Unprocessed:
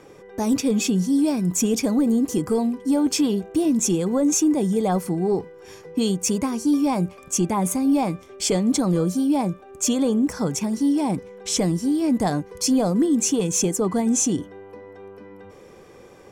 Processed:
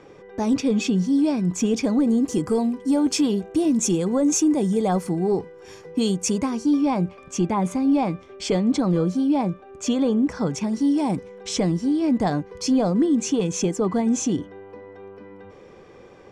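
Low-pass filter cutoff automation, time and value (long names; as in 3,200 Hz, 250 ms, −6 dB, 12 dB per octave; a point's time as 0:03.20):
0:01.76 4,900 Hz
0:02.44 8,800 Hz
0:06.19 8,800 Hz
0:06.81 4,100 Hz
0:10.34 4,100 Hz
0:11.23 8,900 Hz
0:11.60 4,700 Hz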